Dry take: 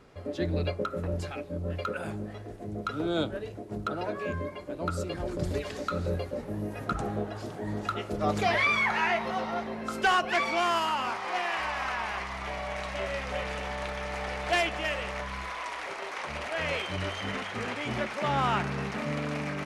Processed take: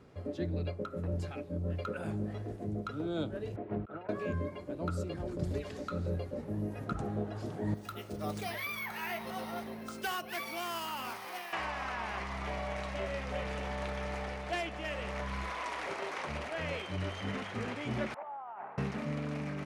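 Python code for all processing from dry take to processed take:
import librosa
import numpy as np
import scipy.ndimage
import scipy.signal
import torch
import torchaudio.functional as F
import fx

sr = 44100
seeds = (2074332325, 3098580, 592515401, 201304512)

y = fx.chain(x, sr, fx.lowpass(hz=2600.0, slope=24),
    fx.low_shelf(hz=460.0, db=-12.0),
    fx.over_compress(threshold_db=-42.0, ratio=-0.5), at=(3.56, 4.09))
y = fx.chain(y, sr, fx.pre_emphasis(coefficient=0.8),
    fx.resample_bad(factor=3, down='filtered', up='hold'), at=(7.74, 11.53))
y = fx.chain(y, sr, fx.over_compress(threshold_db=-31.0, ratio=-0.5),
    fx.ladder_bandpass(hz=890.0, resonance_pct=60),
    fx.air_absorb(metres=380.0), at=(18.14, 18.78))
y = scipy.signal.sosfilt(scipy.signal.butter(2, 63.0, 'highpass', fs=sr, output='sos'), y)
y = fx.low_shelf(y, sr, hz=430.0, db=8.5)
y = fx.rider(y, sr, range_db=10, speed_s=0.5)
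y = F.gain(torch.from_numpy(y), -7.5).numpy()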